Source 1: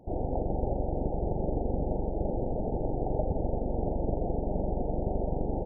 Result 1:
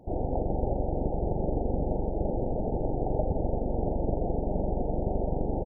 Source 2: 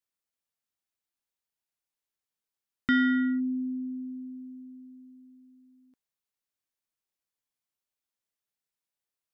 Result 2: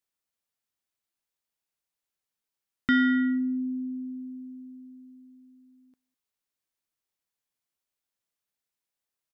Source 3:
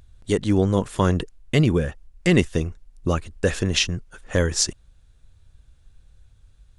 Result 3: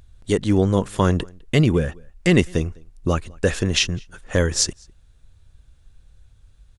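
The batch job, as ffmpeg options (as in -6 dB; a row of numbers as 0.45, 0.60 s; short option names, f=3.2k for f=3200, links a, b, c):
-filter_complex "[0:a]asplit=2[a][b];[b]adelay=204.1,volume=-27dB,highshelf=f=4k:g=-4.59[c];[a][c]amix=inputs=2:normalize=0,volume=1.5dB"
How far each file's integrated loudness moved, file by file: +1.5, +1.5, +1.5 LU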